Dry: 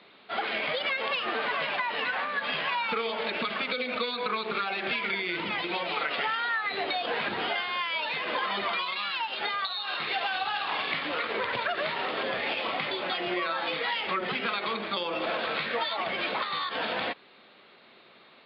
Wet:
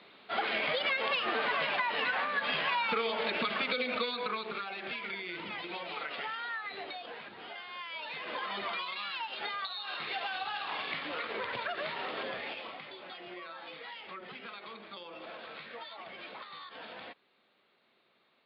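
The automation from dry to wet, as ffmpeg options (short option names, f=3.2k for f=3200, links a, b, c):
-af "volume=10dB,afade=t=out:st=3.85:d=0.79:silence=0.421697,afade=t=out:st=6.57:d=0.76:silence=0.354813,afade=t=in:st=7.33:d=1.3:silence=0.266073,afade=t=out:st=12.2:d=0.61:silence=0.354813"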